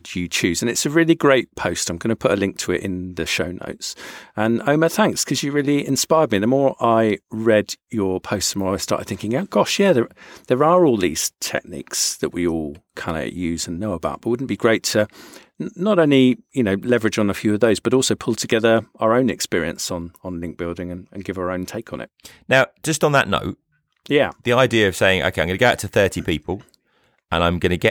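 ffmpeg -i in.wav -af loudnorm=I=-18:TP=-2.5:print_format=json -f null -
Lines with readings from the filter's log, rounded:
"input_i" : "-19.4",
"input_tp" : "-2.8",
"input_lra" : "3.8",
"input_thresh" : "-29.9",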